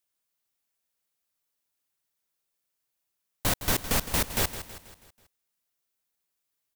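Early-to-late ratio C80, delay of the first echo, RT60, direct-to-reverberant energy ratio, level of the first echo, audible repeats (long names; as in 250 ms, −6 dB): no reverb audible, 162 ms, no reverb audible, no reverb audible, −12.5 dB, 4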